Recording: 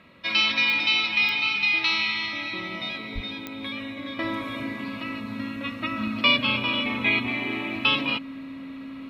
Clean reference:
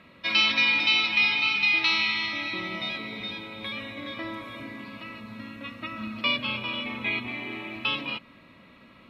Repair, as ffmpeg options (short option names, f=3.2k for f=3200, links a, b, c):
-filter_complex "[0:a]adeclick=t=4,bandreject=f=270:w=30,asplit=3[a][b][c];[a]afade=t=out:st=3.14:d=0.02[d];[b]highpass=f=140:w=0.5412,highpass=f=140:w=1.3066,afade=t=in:st=3.14:d=0.02,afade=t=out:st=3.26:d=0.02[e];[c]afade=t=in:st=3.26:d=0.02[f];[d][e][f]amix=inputs=3:normalize=0,asetnsamples=n=441:p=0,asendcmd='4.19 volume volume -6dB',volume=0dB"